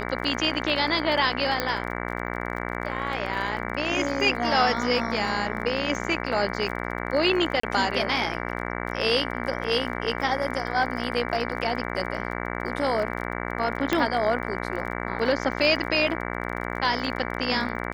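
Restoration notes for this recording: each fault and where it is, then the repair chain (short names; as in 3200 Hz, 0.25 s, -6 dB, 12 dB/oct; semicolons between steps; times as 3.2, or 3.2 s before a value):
buzz 60 Hz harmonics 38 -31 dBFS
crackle 30/s -34 dBFS
1.6 pop -9 dBFS
7.6–7.63 gap 34 ms
13.93 pop -8 dBFS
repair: de-click; de-hum 60 Hz, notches 38; interpolate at 7.6, 34 ms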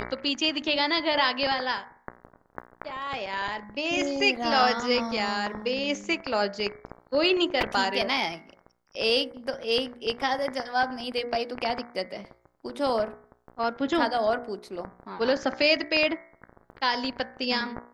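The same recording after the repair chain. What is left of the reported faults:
none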